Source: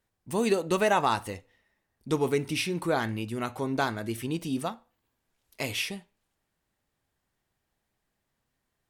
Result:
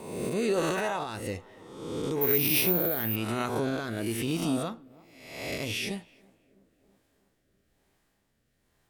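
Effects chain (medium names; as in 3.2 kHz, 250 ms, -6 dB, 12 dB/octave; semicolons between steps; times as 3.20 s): reverse spectral sustain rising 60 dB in 0.83 s; in parallel at +1.5 dB: compression, threshold -36 dBFS, peak gain reduction 18 dB; on the sum: peak limiter -18 dBFS, peak gain reduction 10.5 dB; on a send: tape echo 327 ms, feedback 75%, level -23.5 dB, low-pass 1.1 kHz; 2.21–3.16 s: on the sum: careless resampling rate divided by 3×, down filtered, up zero stuff; rotary cabinet horn 1.1 Hz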